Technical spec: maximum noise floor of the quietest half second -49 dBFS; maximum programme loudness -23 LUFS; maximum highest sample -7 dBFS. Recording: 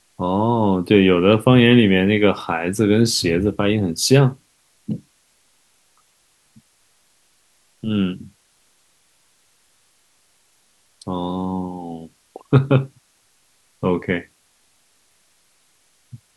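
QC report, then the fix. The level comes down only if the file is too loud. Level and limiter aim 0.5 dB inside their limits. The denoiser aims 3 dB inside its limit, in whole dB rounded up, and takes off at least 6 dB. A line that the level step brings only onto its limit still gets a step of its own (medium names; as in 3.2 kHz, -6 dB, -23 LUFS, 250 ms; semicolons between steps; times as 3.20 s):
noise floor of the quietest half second -61 dBFS: pass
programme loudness -18.0 LUFS: fail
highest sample -1.5 dBFS: fail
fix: trim -5.5 dB; peak limiter -7.5 dBFS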